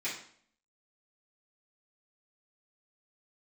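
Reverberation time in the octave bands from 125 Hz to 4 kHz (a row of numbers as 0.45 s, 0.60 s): 0.60 s, 0.70 s, 0.60 s, 0.55 s, 0.50 s, 0.50 s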